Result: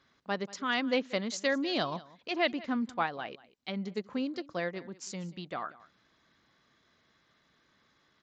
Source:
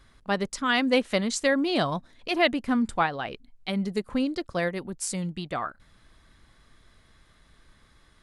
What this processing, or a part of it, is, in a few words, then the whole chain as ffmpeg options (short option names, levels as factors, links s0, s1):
Bluetooth headset: -filter_complex "[0:a]asettb=1/sr,asplit=3[s0][s1][s2];[s0]atrim=end=1.384[s3];[s1]atrim=start=1.38:end=1.92,asetpts=PTS-STARTPTS,afade=t=in:d=0.004:c=qsin,afade=t=out:st=0.536:d=0.004:c=qsin,highshelf=f=4300:g=8.5[s4];[s2]atrim=start=1.916[s5];[s3][s4]acrossfade=d=0.004:c1=hsin:c2=qsin[s6];[s6][s5]acrossfade=d=0.004:c1=qsin:c2=hsin,highpass=170,aecho=1:1:186:0.1,aresample=16000,aresample=44100,volume=0.473" -ar 16000 -c:a sbc -b:a 64k